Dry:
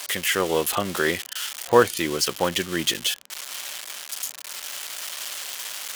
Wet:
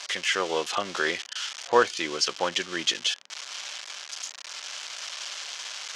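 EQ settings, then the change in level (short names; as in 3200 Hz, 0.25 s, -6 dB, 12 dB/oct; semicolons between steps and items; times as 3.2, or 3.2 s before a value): HPF 710 Hz 6 dB/oct; Chebyshev low-pass 6100 Hz, order 3; notch 1900 Hz, Q 25; 0.0 dB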